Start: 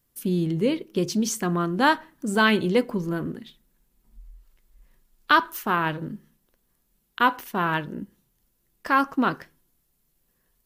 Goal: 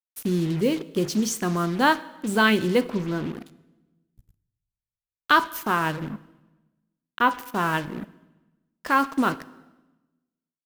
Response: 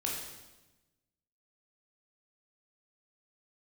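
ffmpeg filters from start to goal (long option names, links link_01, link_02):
-filter_complex "[0:a]acrusher=bits=5:mix=0:aa=0.5,asettb=1/sr,asplit=3[link_01][link_02][link_03];[link_01]atrim=end=2.814[link_04];[link_02]atrim=start=2.81:end=3.37,asetpts=PTS-STARTPTS,afade=type=in:duration=0.004:curve=qsin,afade=type=out:start_time=0.556:duration=0.004:curve=qsin,acrossover=split=5200[link_05][link_06];[link_06]acompressor=threshold=-55dB:ratio=4:attack=1:release=60[link_07];[link_05][link_07]amix=inputs=2:normalize=0[link_08];[link_03]atrim=start=3.366[link_09];[link_04][link_08]acrossfade=duration=0.004:curve1=hsin:curve2=qsin[link_10];[link_10][link_09]acrossfade=duration=0.004:curve1=qsin:curve2=hsin,asettb=1/sr,asplit=3[link_11][link_12][link_13];[link_11]atrim=end=6.094[link_14];[link_12]atrim=start=6.09:end=7.31,asetpts=PTS-STARTPTS,afade=type=in:duration=0.004:curve=qsin,afade=type=out:start_time=1.216:duration=0.004:curve=qsin,equalizer=frequency=8500:width_type=o:width=1.6:gain=-10.5[link_15];[link_13]atrim=start=7.306[link_16];[link_14][link_15]acrossfade=duration=0.004:curve1=hsin:curve2=qsin[link_17];[link_17][link_16]acrossfade=duration=0.004:curve1=qsin:curve2=hsin,asplit=2[link_18][link_19];[1:a]atrim=start_sample=2205,adelay=19[link_20];[link_19][link_20]afir=irnorm=-1:irlink=0,volume=-19.5dB[link_21];[link_18][link_21]amix=inputs=2:normalize=0"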